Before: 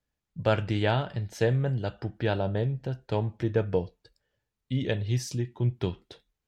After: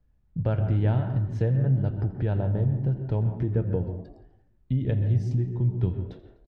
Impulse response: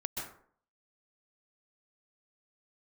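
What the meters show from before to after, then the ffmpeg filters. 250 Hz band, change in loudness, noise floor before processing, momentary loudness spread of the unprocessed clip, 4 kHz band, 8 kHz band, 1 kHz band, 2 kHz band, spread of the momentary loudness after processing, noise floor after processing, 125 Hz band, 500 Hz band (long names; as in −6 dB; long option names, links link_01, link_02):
+2.0 dB, +3.0 dB, −85 dBFS, 8 LU, below −15 dB, can't be measured, −7.0 dB, below −10 dB, 7 LU, −64 dBFS, +5.5 dB, −4.0 dB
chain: -filter_complex "[0:a]aemphasis=mode=reproduction:type=riaa,acompressor=threshold=-37dB:ratio=2,asplit=6[link_01][link_02][link_03][link_04][link_05][link_06];[link_02]adelay=84,afreqshift=63,volume=-19dB[link_07];[link_03]adelay=168,afreqshift=126,volume=-23.3dB[link_08];[link_04]adelay=252,afreqshift=189,volume=-27.6dB[link_09];[link_05]adelay=336,afreqshift=252,volume=-31.9dB[link_10];[link_06]adelay=420,afreqshift=315,volume=-36.2dB[link_11];[link_01][link_07][link_08][link_09][link_10][link_11]amix=inputs=6:normalize=0,asplit=2[link_12][link_13];[1:a]atrim=start_sample=2205,afade=type=out:start_time=0.32:duration=0.01,atrim=end_sample=14553,lowpass=2400[link_14];[link_13][link_14]afir=irnorm=-1:irlink=0,volume=-5.5dB[link_15];[link_12][link_15]amix=inputs=2:normalize=0,volume=1.5dB"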